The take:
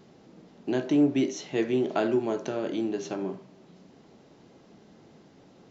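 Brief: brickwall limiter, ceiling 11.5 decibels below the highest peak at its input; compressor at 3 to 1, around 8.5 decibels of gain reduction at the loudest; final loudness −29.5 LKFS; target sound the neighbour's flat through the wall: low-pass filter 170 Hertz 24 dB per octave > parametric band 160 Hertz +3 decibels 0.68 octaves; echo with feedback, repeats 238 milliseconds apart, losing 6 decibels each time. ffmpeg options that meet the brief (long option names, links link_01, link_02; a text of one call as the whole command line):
ffmpeg -i in.wav -af "acompressor=threshold=-30dB:ratio=3,alimiter=level_in=5.5dB:limit=-24dB:level=0:latency=1,volume=-5.5dB,lowpass=frequency=170:width=0.5412,lowpass=frequency=170:width=1.3066,equalizer=frequency=160:width_type=o:width=0.68:gain=3,aecho=1:1:238|476|714|952|1190|1428:0.501|0.251|0.125|0.0626|0.0313|0.0157,volume=23.5dB" out.wav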